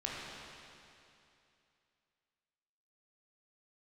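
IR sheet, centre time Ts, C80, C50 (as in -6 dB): 162 ms, -1.0 dB, -2.5 dB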